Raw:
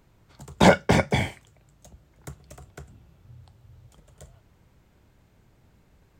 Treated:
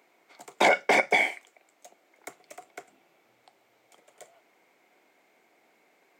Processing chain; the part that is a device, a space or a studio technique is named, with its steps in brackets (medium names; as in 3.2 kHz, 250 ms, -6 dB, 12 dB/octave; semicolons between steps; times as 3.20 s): laptop speaker (high-pass 310 Hz 24 dB/octave; peaking EQ 720 Hz +8 dB 0.24 oct; peaking EQ 2.2 kHz +11 dB 0.31 oct; peak limiter -10 dBFS, peak gain reduction 9 dB); 1.16–2.29 s: high-pass 200 Hz 12 dB/octave